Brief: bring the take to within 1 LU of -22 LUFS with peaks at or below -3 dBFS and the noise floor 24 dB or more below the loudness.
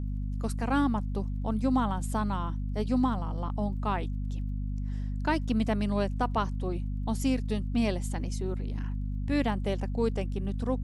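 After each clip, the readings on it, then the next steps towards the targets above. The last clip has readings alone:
tick rate 22 per s; hum 50 Hz; highest harmonic 250 Hz; hum level -29 dBFS; loudness -31.0 LUFS; peak level -14.5 dBFS; loudness target -22.0 LUFS
-> de-click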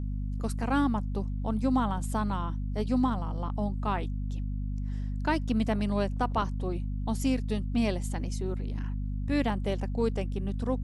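tick rate 0.092 per s; hum 50 Hz; highest harmonic 250 Hz; hum level -29 dBFS
-> de-hum 50 Hz, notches 5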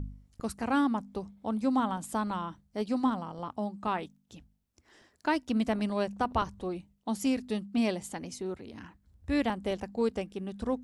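hum not found; loudness -32.5 LUFS; peak level -15.5 dBFS; loudness target -22.0 LUFS
-> trim +10.5 dB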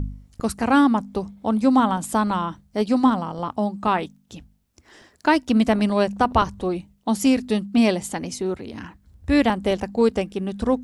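loudness -22.0 LUFS; peak level -5.0 dBFS; noise floor -60 dBFS

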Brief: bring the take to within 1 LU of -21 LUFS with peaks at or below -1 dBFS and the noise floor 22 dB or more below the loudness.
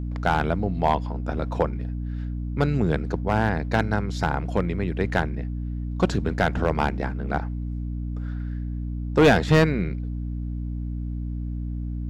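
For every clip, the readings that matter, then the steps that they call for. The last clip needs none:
clipped samples 0.4%; clipping level -10.5 dBFS; hum 60 Hz; highest harmonic 300 Hz; hum level -27 dBFS; loudness -25.5 LUFS; peak level -10.5 dBFS; loudness target -21.0 LUFS
-> clip repair -10.5 dBFS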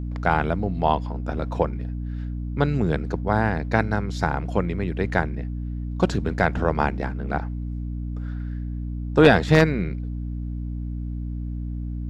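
clipped samples 0.0%; hum 60 Hz; highest harmonic 300 Hz; hum level -27 dBFS
-> de-hum 60 Hz, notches 5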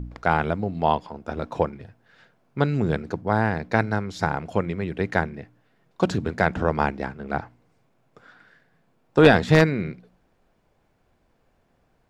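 hum not found; loudness -23.5 LUFS; peak level -1.0 dBFS; loudness target -21.0 LUFS
-> trim +2.5 dB; peak limiter -1 dBFS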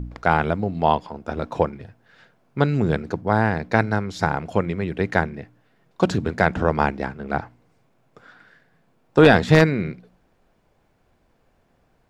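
loudness -21.5 LUFS; peak level -1.0 dBFS; noise floor -64 dBFS

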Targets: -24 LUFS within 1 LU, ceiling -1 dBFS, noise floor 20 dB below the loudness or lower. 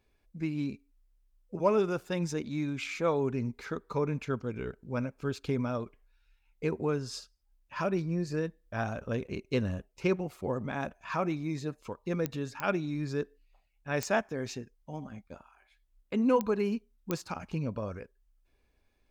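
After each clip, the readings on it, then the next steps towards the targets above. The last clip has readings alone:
clicks found 5; loudness -33.5 LUFS; peak level -13.5 dBFS; loudness target -24.0 LUFS
-> de-click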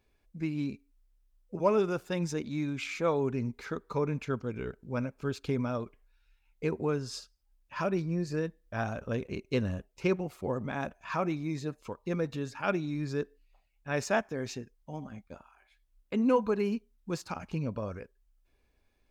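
clicks found 0; loudness -33.5 LUFS; peak level -13.5 dBFS; loudness target -24.0 LUFS
-> trim +9.5 dB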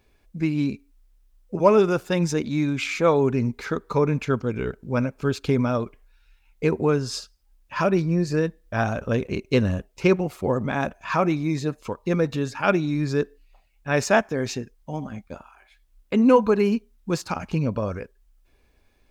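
loudness -24.0 LUFS; peak level -4.0 dBFS; noise floor -62 dBFS

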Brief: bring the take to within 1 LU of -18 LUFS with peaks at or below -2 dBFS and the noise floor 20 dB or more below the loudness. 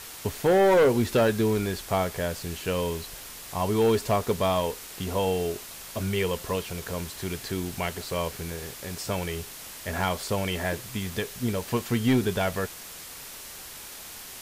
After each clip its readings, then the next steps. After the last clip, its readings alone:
clipped samples 0.9%; clipping level -16.0 dBFS; noise floor -42 dBFS; noise floor target -48 dBFS; loudness -27.5 LUFS; peak level -16.0 dBFS; loudness target -18.0 LUFS
-> clip repair -16 dBFS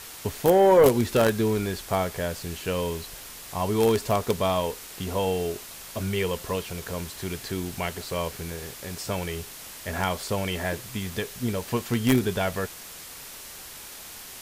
clipped samples 0.0%; noise floor -42 dBFS; noise floor target -47 dBFS
-> noise reduction 6 dB, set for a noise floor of -42 dBFS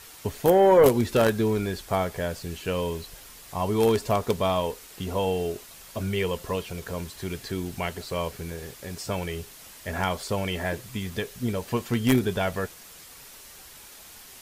noise floor -47 dBFS; loudness -26.5 LUFS; peak level -6.5 dBFS; loudness target -18.0 LUFS
-> trim +8.5 dB; peak limiter -2 dBFS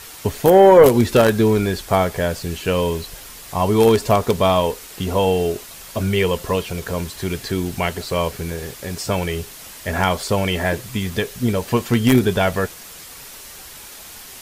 loudness -18.5 LUFS; peak level -2.0 dBFS; noise floor -39 dBFS

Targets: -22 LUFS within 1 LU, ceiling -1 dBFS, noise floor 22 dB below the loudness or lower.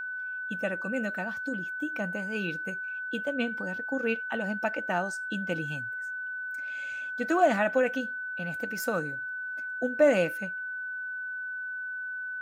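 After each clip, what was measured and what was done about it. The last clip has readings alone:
steady tone 1.5 kHz; tone level -33 dBFS; loudness -30.5 LUFS; peak level -11.5 dBFS; loudness target -22.0 LUFS
-> band-stop 1.5 kHz, Q 30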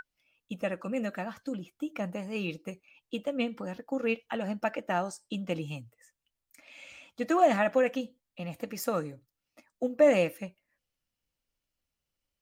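steady tone not found; loudness -31.0 LUFS; peak level -11.5 dBFS; loudness target -22.0 LUFS
-> trim +9 dB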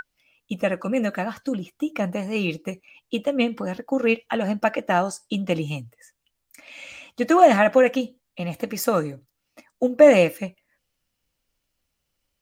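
loudness -22.0 LUFS; peak level -2.5 dBFS; noise floor -78 dBFS

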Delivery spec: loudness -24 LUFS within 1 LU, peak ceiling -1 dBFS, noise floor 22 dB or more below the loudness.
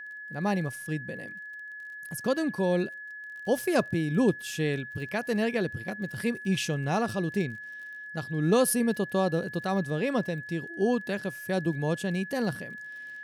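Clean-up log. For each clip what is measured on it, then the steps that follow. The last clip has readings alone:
tick rate 30 per s; steady tone 1.7 kHz; tone level -39 dBFS; loudness -29.0 LUFS; peak level -12.0 dBFS; loudness target -24.0 LUFS
-> de-click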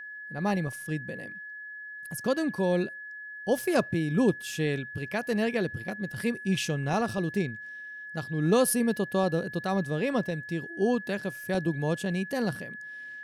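tick rate 0.076 per s; steady tone 1.7 kHz; tone level -39 dBFS
-> band-stop 1.7 kHz, Q 30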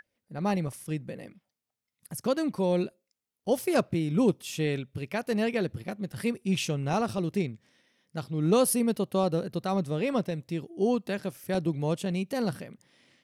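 steady tone not found; loudness -29.5 LUFS; peak level -12.5 dBFS; loudness target -24.0 LUFS
-> trim +5.5 dB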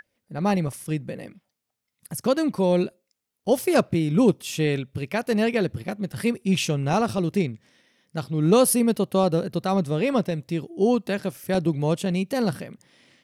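loudness -24.0 LUFS; peak level -7.0 dBFS; noise floor -83 dBFS

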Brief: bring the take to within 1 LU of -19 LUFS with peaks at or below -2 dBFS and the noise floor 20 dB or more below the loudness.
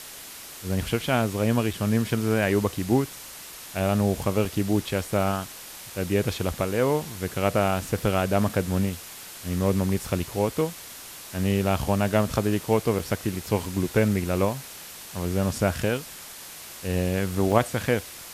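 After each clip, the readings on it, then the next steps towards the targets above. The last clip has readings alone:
dropouts 5; longest dropout 3.6 ms; noise floor -42 dBFS; noise floor target -46 dBFS; loudness -25.5 LUFS; peak level -5.0 dBFS; loudness target -19.0 LUFS
-> interpolate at 1.73/4.45/8.49/12.99/17.52 s, 3.6 ms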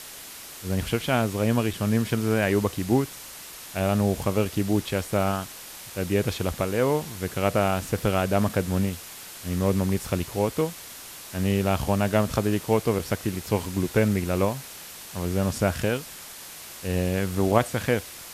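dropouts 0; noise floor -42 dBFS; noise floor target -46 dBFS
-> noise reduction 6 dB, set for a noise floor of -42 dBFS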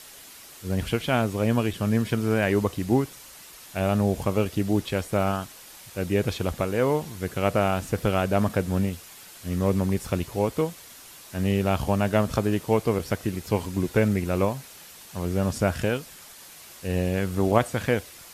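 noise floor -46 dBFS; loudness -25.5 LUFS; peak level -5.0 dBFS; loudness target -19.0 LUFS
-> trim +6.5 dB; peak limiter -2 dBFS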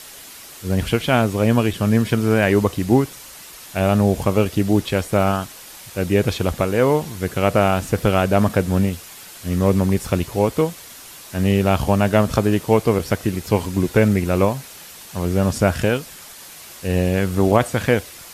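loudness -19.5 LUFS; peak level -2.0 dBFS; noise floor -40 dBFS

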